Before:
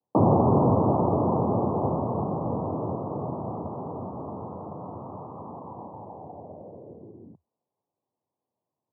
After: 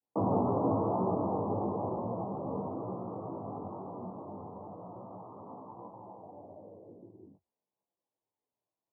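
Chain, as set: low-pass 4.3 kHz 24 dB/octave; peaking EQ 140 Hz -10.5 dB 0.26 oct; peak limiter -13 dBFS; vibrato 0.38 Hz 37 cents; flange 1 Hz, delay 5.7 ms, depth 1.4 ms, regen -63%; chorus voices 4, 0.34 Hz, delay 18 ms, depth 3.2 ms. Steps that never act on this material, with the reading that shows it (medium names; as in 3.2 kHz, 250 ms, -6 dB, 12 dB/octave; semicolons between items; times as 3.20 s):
low-pass 4.3 kHz: input has nothing above 1.3 kHz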